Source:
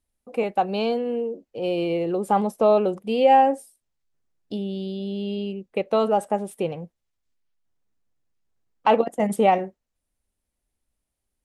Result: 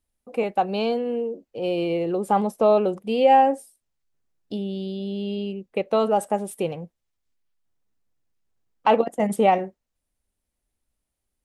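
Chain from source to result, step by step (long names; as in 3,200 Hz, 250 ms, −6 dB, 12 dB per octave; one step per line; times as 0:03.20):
0:06.16–0:06.76: high-shelf EQ 5,400 Hz +7 dB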